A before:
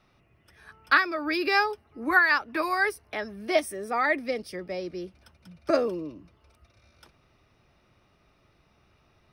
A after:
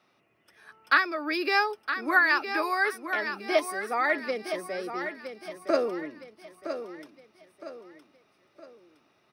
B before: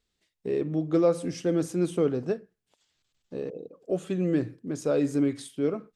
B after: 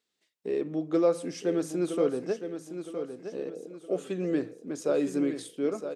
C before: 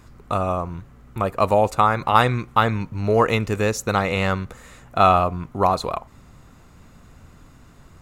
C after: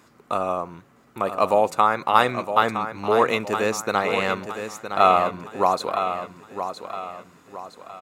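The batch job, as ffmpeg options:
-filter_complex "[0:a]highpass=250,asplit=2[link_01][link_02];[link_02]aecho=0:1:964|1928|2892|3856:0.355|0.142|0.0568|0.0227[link_03];[link_01][link_03]amix=inputs=2:normalize=0,volume=-1dB"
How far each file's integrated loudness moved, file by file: −1.0, −2.5, −2.0 LU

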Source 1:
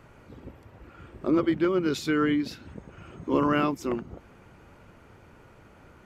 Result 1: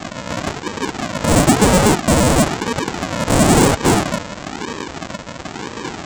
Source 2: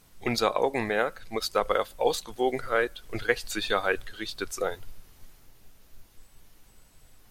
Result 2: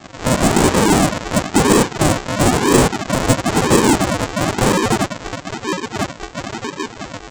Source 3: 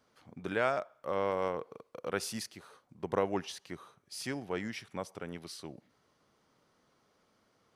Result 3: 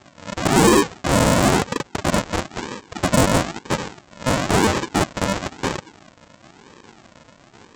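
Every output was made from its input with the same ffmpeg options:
-filter_complex "[0:a]lowpass=frequency=2600:width_type=q:width=0.5098,lowpass=frequency=2600:width_type=q:width=0.6013,lowpass=frequency=2600:width_type=q:width=0.9,lowpass=frequency=2600:width_type=q:width=2.563,afreqshift=-3100,aresample=16000,acrusher=samples=32:mix=1:aa=0.000001:lfo=1:lforange=19.2:lforate=1,aresample=44100,asplit=2[link_01][link_02];[link_02]highpass=frequency=720:poles=1,volume=34dB,asoftclip=type=tanh:threshold=-7dB[link_03];[link_01][link_03]amix=inputs=2:normalize=0,lowpass=frequency=1500:poles=1,volume=-6dB,aemphasis=mode=production:type=75kf,volume=6.5dB"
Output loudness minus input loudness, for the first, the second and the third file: +10.0, +12.0, +17.0 LU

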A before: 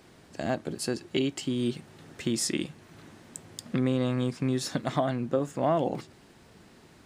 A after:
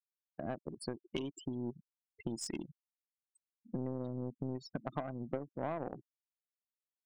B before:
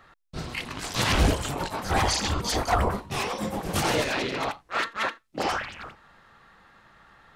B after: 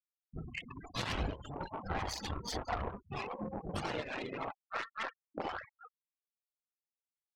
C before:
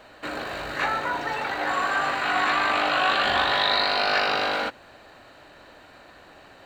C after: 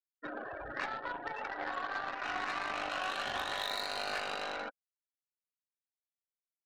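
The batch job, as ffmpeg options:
-af "afftfilt=real='re*gte(hypot(re,im),0.0501)':imag='im*gte(hypot(re,im),0.0501)':win_size=1024:overlap=0.75,aeval=exprs='0.398*(cos(1*acos(clip(val(0)/0.398,-1,1)))-cos(1*PI/2))+0.0447*(cos(5*acos(clip(val(0)/0.398,-1,1)))-cos(5*PI/2))+0.0631*(cos(7*acos(clip(val(0)/0.398,-1,1)))-cos(7*PI/2))+0.00447*(cos(8*acos(clip(val(0)/0.398,-1,1)))-cos(8*PI/2))':channel_layout=same,acompressor=threshold=-36dB:ratio=3,volume=-1dB"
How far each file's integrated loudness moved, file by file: −12.0, −13.5, −14.0 LU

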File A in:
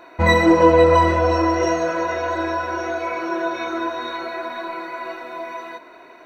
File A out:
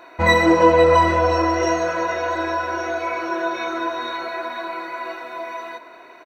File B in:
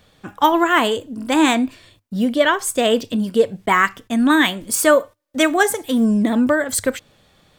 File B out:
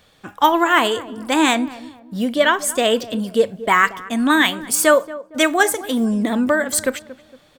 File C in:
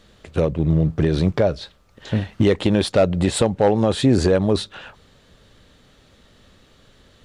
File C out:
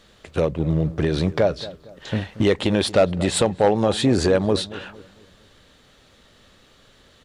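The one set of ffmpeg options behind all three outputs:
-filter_complex "[0:a]lowshelf=frequency=370:gain=-6,asplit=2[link_01][link_02];[link_02]adelay=230,lowpass=frequency=1100:poles=1,volume=-16dB,asplit=2[link_03][link_04];[link_04]adelay=230,lowpass=frequency=1100:poles=1,volume=0.41,asplit=2[link_05][link_06];[link_06]adelay=230,lowpass=frequency=1100:poles=1,volume=0.41,asplit=2[link_07][link_08];[link_08]adelay=230,lowpass=frequency=1100:poles=1,volume=0.41[link_09];[link_01][link_03][link_05][link_07][link_09]amix=inputs=5:normalize=0,volume=1.5dB"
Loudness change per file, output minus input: −0.5, 0.0, −1.5 LU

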